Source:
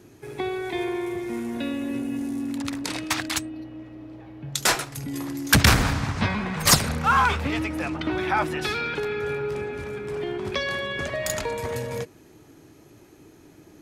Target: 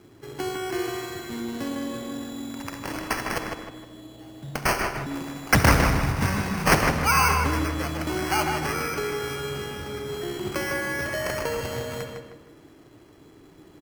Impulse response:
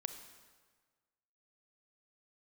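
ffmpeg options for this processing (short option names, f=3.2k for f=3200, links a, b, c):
-filter_complex "[0:a]acrusher=samples=12:mix=1:aa=0.000001,asplit=2[a][b];[b]adelay=155,lowpass=f=3.7k:p=1,volume=-4.5dB,asplit=2[c][d];[d]adelay=155,lowpass=f=3.7k:p=1,volume=0.38,asplit=2[e][f];[f]adelay=155,lowpass=f=3.7k:p=1,volume=0.38,asplit=2[g][h];[h]adelay=155,lowpass=f=3.7k:p=1,volume=0.38,asplit=2[i][j];[j]adelay=155,lowpass=f=3.7k:p=1,volume=0.38[k];[a][c][e][g][i][k]amix=inputs=6:normalize=0[l];[1:a]atrim=start_sample=2205,afade=t=out:st=0.21:d=0.01,atrim=end_sample=9702,asetrate=41895,aresample=44100[m];[l][m]afir=irnorm=-1:irlink=0"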